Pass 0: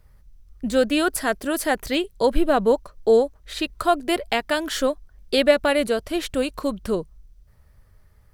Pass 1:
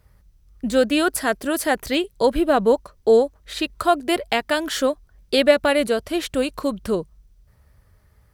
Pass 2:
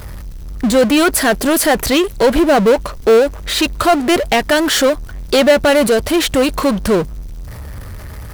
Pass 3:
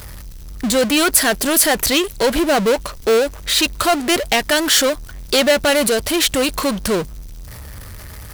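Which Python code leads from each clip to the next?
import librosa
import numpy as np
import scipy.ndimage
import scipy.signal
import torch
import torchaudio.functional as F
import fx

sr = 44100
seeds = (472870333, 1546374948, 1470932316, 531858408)

y1 = scipy.signal.sosfilt(scipy.signal.butter(2, 44.0, 'highpass', fs=sr, output='sos'), x)
y1 = F.gain(torch.from_numpy(y1), 1.5).numpy()
y2 = fx.power_curve(y1, sr, exponent=0.5)
y3 = fx.high_shelf(y2, sr, hz=2100.0, db=9.5)
y3 = F.gain(torch.from_numpy(y3), -5.5).numpy()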